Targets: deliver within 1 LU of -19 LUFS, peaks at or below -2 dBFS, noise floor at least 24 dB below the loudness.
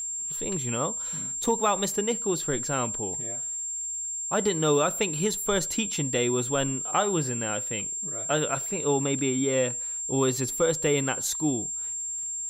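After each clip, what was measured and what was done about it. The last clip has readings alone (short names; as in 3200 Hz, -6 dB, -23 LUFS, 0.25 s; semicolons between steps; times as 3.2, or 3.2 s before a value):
ticks 31/s; steady tone 7400 Hz; tone level -30 dBFS; loudness -26.5 LUFS; peak -11.5 dBFS; loudness target -19.0 LUFS
-> de-click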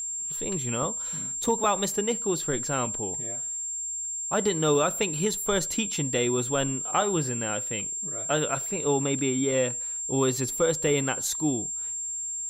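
ticks 0.16/s; steady tone 7400 Hz; tone level -30 dBFS
-> notch 7400 Hz, Q 30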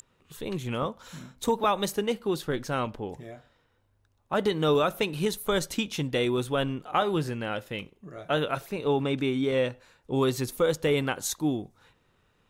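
steady tone none; loudness -28.5 LUFS; peak -12.5 dBFS; loudness target -19.0 LUFS
-> gain +9.5 dB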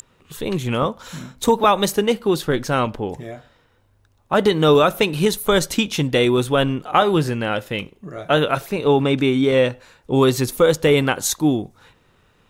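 loudness -19.0 LUFS; peak -3.0 dBFS; noise floor -59 dBFS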